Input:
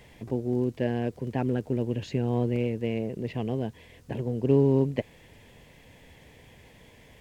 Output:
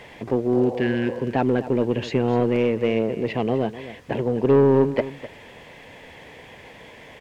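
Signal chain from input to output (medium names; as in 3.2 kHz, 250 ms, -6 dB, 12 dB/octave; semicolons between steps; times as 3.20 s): spectral replace 0.57–1.17 s, 450–1300 Hz both; overdrive pedal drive 18 dB, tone 1.7 kHz, clips at -10.5 dBFS; delay 254 ms -15 dB; trim +3.5 dB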